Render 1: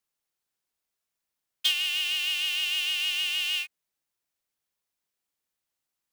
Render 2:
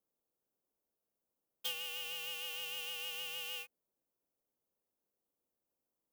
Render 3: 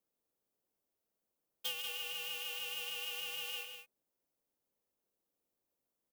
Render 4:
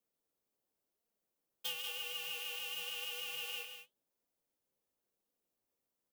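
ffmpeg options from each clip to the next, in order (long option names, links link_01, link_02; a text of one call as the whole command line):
ffmpeg -i in.wav -af "equalizer=frequency=250:width_type=o:width=1:gain=7,equalizer=frequency=500:width_type=o:width=1:gain=9,equalizer=frequency=2000:width_type=o:width=1:gain=-12,equalizer=frequency=4000:width_type=o:width=1:gain=-12,equalizer=frequency=8000:width_type=o:width=1:gain=-6,volume=-2.5dB" out.wav
ffmpeg -i in.wav -af "aecho=1:1:137|192.4:0.282|0.398" out.wav
ffmpeg -i in.wav -af "flanger=delay=4.1:depth=9.4:regen=59:speed=0.94:shape=sinusoidal,volume=3.5dB" out.wav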